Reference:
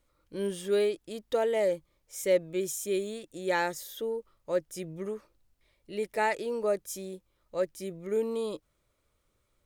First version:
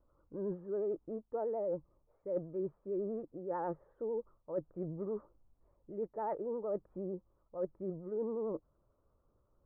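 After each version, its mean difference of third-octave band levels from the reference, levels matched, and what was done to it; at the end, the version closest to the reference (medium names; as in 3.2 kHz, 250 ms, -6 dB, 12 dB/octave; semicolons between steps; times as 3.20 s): 11.0 dB: steep low-pass 1.2 kHz 36 dB/octave; reverse; compression 6:1, threshold -36 dBFS, peak gain reduction 15 dB; reverse; vibrato 11 Hz 81 cents; trim +1.5 dB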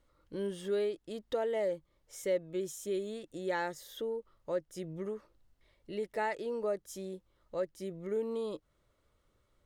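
2.5 dB: compression 1.5:1, threshold -45 dBFS, peak gain reduction 9 dB; treble shelf 5.9 kHz -10.5 dB; band-stop 2.4 kHz, Q 11; trim +2 dB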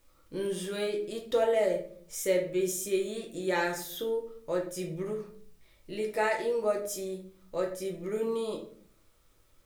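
5.0 dB: in parallel at +1 dB: compression, threshold -43 dBFS, peak gain reduction 21 dB; on the sum: word length cut 12-bit, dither triangular; simulated room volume 57 m³, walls mixed, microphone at 0.64 m; trim -3.5 dB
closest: second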